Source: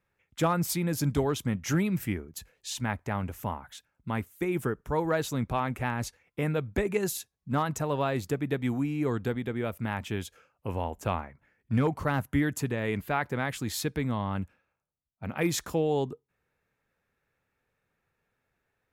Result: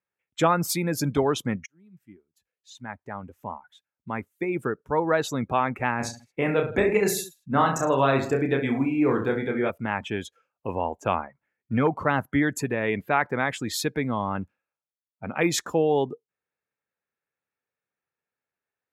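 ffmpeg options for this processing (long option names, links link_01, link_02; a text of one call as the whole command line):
ffmpeg -i in.wav -filter_complex "[0:a]asettb=1/sr,asplit=3[link_01][link_02][link_03];[link_01]atrim=end=5.974[link_04];[link_02]atrim=start=5.97:end=9.7,asetpts=PTS-STARTPTS,afade=type=in:duration=0.004:curve=qsin,afade=type=out:start_time=3.726:duration=0.004:curve=qsin,aecho=1:1:30|66|109.2|161|223.2:0.631|0.398|0.251|0.158|0.1,atrim=end_sample=164493[link_05];[link_03]atrim=start=9.696[link_06];[link_04][link_05]acrossfade=duration=0.004:curve1=hsin:curve2=qsin[link_07];[link_07][link_06]acrossfade=duration=0.004:curve1=qsin:curve2=hsin,asplit=2[link_08][link_09];[link_08]atrim=end=1.66,asetpts=PTS-STARTPTS,afade=type=out:start_time=1.656:duration=0.004:curve=hsin[link_10];[link_09]atrim=start=1.66,asetpts=PTS-STARTPTS,afade=type=in:duration=3.8[link_11];[link_10][link_11]concat=n=2:v=0:a=1,highpass=frequency=300:poles=1,afftdn=noise_reduction=18:noise_floor=-44,highshelf=frequency=9700:gain=-6.5,volume=7dB" out.wav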